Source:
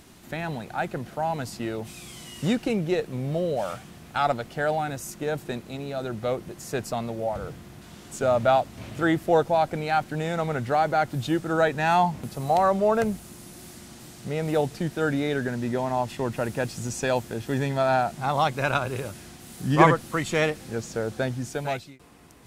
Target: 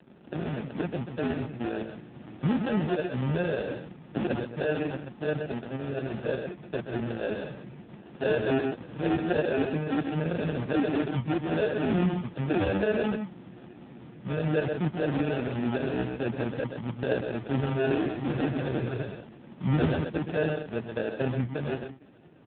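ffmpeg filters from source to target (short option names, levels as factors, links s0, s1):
-af "adynamicequalizer=threshold=0.0251:dfrequency=870:dqfactor=1.1:tfrequency=870:tqfactor=1.1:attack=5:release=100:ratio=0.375:range=2:mode=cutabove:tftype=bell,afftfilt=real='re*between(b*sr/4096,110,3000)':imag='im*between(b*sr/4096,110,3000)':win_size=4096:overlap=0.75,aresample=16000,acrusher=samples=15:mix=1:aa=0.000001,aresample=44100,aecho=1:1:128:0.398,asoftclip=type=tanh:threshold=0.106,lowshelf=f=160:g=4.5" -ar 8000 -c:a libopencore_amrnb -b:a 4750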